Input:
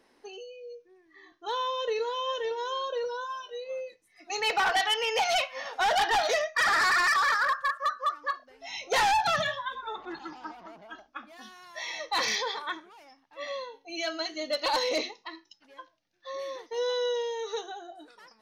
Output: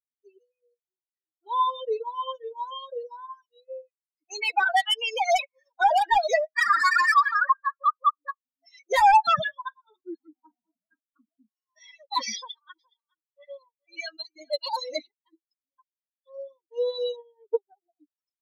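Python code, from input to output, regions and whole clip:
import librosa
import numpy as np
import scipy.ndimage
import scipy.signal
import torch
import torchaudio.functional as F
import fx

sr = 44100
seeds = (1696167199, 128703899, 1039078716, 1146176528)

y = fx.chain(x, sr, fx.lowpass(hz=1400.0, slope=12),
    fx.doubler(ms=34.0, db=-6.5), at=(10.32, 11.49))
y = fx.chain(y, sr, fx.peak_eq(hz=240.0, db=-8.0, octaves=1.7),
    fx.echo_single(ms=419, db=-7.0), at=(12.37, 15.07))
y = fx.chain(y, sr, fx.bandpass_edges(low_hz=150.0, high_hz=2300.0),
    fx.transient(attack_db=8, sustain_db=-11), at=(17.16, 17.86))
y = fx.bin_expand(y, sr, power=3.0)
y = fx.dereverb_blind(y, sr, rt60_s=1.9)
y = fx.peak_eq(y, sr, hz=1000.0, db=8.0, octaves=1.8)
y = y * 10.0 ** (5.0 / 20.0)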